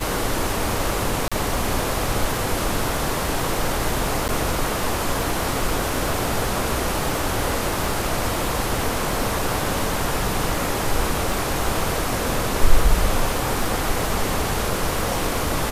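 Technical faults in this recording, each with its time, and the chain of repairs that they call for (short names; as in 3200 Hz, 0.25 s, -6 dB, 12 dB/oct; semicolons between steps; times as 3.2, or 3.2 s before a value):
crackle 51/s -28 dBFS
1.28–1.32 gap 36 ms
4.28–4.29 gap 9.1 ms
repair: de-click; interpolate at 1.28, 36 ms; interpolate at 4.28, 9.1 ms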